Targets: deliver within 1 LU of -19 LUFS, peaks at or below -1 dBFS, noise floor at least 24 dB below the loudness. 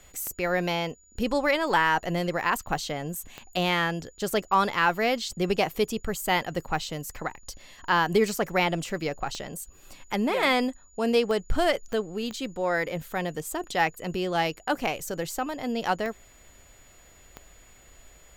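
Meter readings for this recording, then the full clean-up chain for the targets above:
clicks 8; steady tone 6900 Hz; tone level -57 dBFS; loudness -27.5 LUFS; peak -11.0 dBFS; loudness target -19.0 LUFS
-> de-click; notch 6900 Hz, Q 30; gain +8.5 dB

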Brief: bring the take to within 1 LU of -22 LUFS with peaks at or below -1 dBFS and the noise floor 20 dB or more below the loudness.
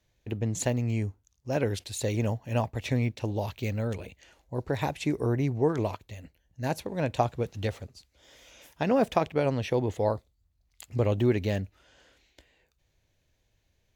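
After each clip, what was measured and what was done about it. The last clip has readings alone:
loudness -29.5 LUFS; peak -9.5 dBFS; loudness target -22.0 LUFS
-> gain +7.5 dB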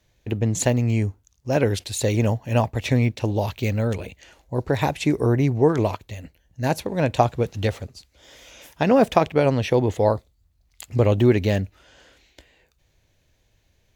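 loudness -22.0 LUFS; peak -2.0 dBFS; noise floor -65 dBFS

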